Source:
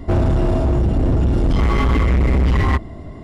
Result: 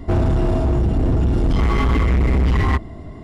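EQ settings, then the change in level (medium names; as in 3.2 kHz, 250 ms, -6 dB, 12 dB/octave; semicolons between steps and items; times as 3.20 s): band-stop 560 Hz, Q 14; -1.0 dB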